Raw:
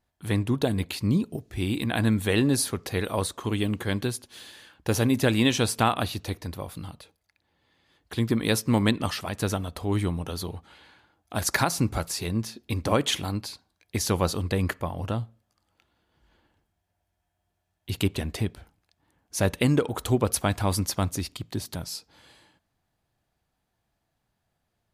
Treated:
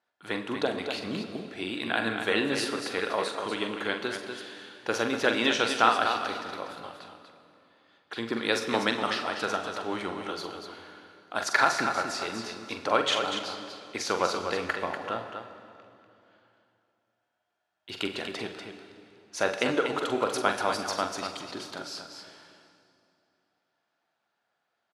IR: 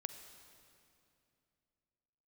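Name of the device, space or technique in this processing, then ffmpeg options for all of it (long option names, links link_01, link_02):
station announcement: -filter_complex "[0:a]highpass=420,lowpass=4900,equalizer=frequency=1400:width_type=o:width=0.28:gain=7.5,aecho=1:1:43.73|242:0.398|0.447[link_01];[1:a]atrim=start_sample=2205[link_02];[link_01][link_02]afir=irnorm=-1:irlink=0,volume=2.5dB"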